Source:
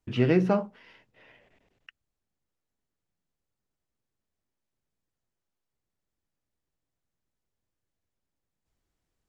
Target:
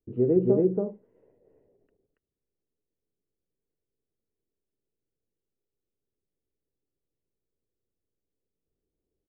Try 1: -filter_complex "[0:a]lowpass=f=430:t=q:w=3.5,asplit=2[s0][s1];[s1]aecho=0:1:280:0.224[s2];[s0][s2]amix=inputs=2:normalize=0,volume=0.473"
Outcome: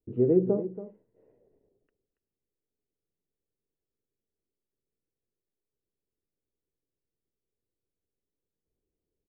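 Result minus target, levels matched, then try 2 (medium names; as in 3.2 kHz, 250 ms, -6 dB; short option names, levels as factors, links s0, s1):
echo-to-direct -12 dB
-filter_complex "[0:a]lowpass=f=430:t=q:w=3.5,asplit=2[s0][s1];[s1]aecho=0:1:280:0.891[s2];[s0][s2]amix=inputs=2:normalize=0,volume=0.473"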